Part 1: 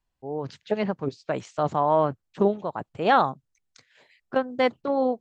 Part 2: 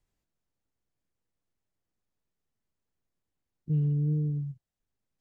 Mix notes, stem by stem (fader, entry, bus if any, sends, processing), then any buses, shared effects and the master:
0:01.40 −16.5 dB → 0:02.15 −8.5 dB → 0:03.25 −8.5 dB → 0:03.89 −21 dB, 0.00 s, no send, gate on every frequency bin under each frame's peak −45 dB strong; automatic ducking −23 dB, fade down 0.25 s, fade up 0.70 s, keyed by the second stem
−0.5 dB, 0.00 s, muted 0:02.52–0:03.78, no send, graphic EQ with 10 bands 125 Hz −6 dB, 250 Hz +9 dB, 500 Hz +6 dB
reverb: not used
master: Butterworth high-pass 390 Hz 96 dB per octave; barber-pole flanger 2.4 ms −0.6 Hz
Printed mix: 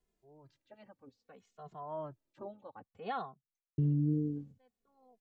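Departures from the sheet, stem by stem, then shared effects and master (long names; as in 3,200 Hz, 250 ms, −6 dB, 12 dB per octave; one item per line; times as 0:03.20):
stem 1 −16.5 dB → −24.5 dB
master: missing Butterworth high-pass 390 Hz 96 dB per octave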